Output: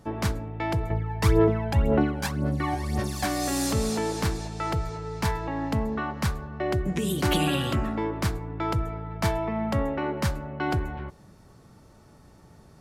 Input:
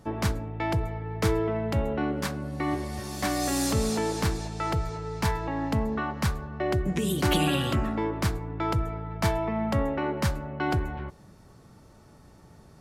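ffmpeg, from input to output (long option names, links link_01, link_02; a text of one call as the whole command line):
ffmpeg -i in.wav -filter_complex "[0:a]asettb=1/sr,asplit=3[link_01][link_02][link_03];[link_01]atrim=end=0.904[link_04];[link_02]atrim=start=0.9:end=3.25,asetpts=PTS-STARTPTS,afade=type=in:duration=0.004:curve=qsin,afade=type=out:start_time=2.346:duration=0.004:curve=qsin,aphaser=in_gain=1:out_gain=1:delay=1.3:decay=0.65:speed=1.9:type=sinusoidal[link_05];[link_03]atrim=start=3.246[link_06];[link_04][link_05]acrossfade=duration=0.004:curve1=hsin:curve2=qsin[link_07];[link_07][link_06]acrossfade=duration=0.004:curve1=qsin:curve2=hsin" out.wav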